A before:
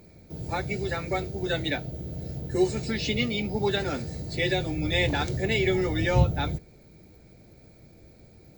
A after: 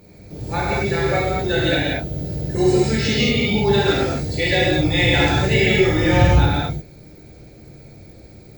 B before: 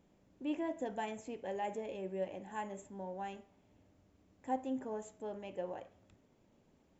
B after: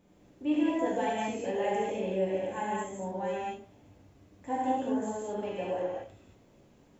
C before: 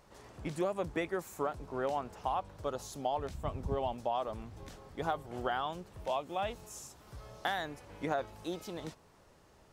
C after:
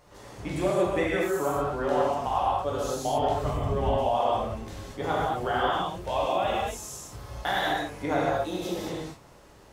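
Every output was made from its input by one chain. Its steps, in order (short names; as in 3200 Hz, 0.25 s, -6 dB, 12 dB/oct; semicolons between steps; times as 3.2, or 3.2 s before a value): non-linear reverb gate 0.26 s flat, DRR -7 dB; gain +2 dB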